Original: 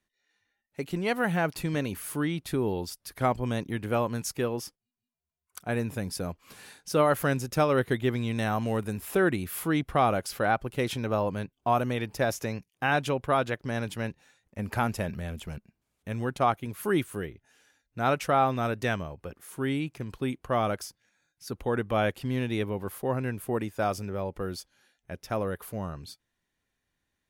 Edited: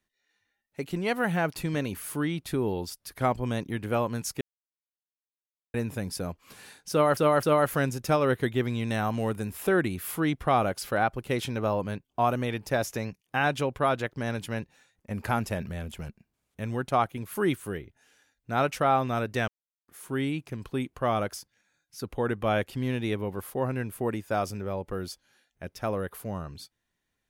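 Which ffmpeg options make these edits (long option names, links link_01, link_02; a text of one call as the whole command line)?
ffmpeg -i in.wav -filter_complex "[0:a]asplit=7[link_01][link_02][link_03][link_04][link_05][link_06][link_07];[link_01]atrim=end=4.41,asetpts=PTS-STARTPTS,afade=type=out:start_time=4.406:duration=0.004:curve=hsin[link_08];[link_02]atrim=start=4.41:end=5.74,asetpts=PTS-STARTPTS,volume=0[link_09];[link_03]atrim=start=5.74:end=7.172,asetpts=PTS-STARTPTS,afade=type=in:duration=0.004:curve=hsin[link_10];[link_04]atrim=start=6.908:end=7.172[link_11];[link_05]atrim=start=6.908:end=18.96,asetpts=PTS-STARTPTS,afade=type=out:start_time=12.048:duration=0.004:curve=hsin[link_12];[link_06]atrim=start=18.96:end=19.36,asetpts=PTS-STARTPTS,volume=0[link_13];[link_07]atrim=start=19.36,asetpts=PTS-STARTPTS,afade=type=in:duration=0.004:curve=hsin[link_14];[link_08][link_09][link_10]concat=n=3:v=0:a=1[link_15];[link_15][link_11]acrossfade=duration=0.004:curve1=hsin:curve2=hsin[link_16];[link_12][link_13][link_14]concat=n=3:v=0:a=1[link_17];[link_16][link_17]acrossfade=duration=0.004:curve1=hsin:curve2=hsin" out.wav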